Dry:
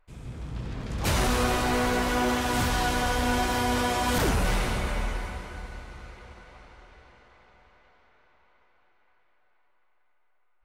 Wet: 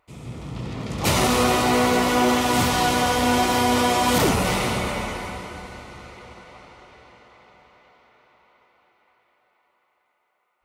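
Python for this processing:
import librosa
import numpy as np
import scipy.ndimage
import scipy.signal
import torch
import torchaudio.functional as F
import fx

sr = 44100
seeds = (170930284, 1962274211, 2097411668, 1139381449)

y = scipy.signal.sosfilt(scipy.signal.butter(2, 110.0, 'highpass', fs=sr, output='sos'), x)
y = fx.notch(y, sr, hz=1600.0, q=5.1)
y = y * 10.0 ** (7.0 / 20.0)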